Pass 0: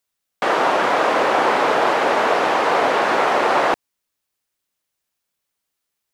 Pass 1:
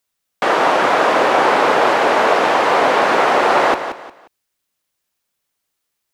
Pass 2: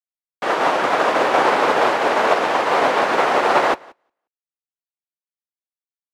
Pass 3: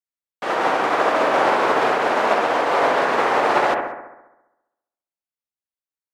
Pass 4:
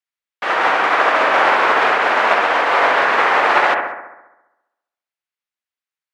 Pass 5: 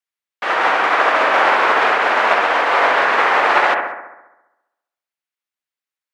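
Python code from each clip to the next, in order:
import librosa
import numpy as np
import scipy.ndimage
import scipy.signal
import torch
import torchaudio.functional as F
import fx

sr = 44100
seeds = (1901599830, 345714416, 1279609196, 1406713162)

y1 = fx.echo_feedback(x, sr, ms=178, feedback_pct=29, wet_db=-10.0)
y1 = y1 * 10.0 ** (3.0 / 20.0)
y2 = fx.upward_expand(y1, sr, threshold_db=-35.0, expansion=2.5)
y3 = fx.echo_bbd(y2, sr, ms=67, stages=1024, feedback_pct=62, wet_db=-3.5)
y3 = y3 * 10.0 ** (-3.5 / 20.0)
y4 = fx.peak_eq(y3, sr, hz=2000.0, db=13.5, octaves=2.9)
y4 = y4 * 10.0 ** (-5.0 / 20.0)
y5 = fx.low_shelf(y4, sr, hz=130.0, db=-5.5)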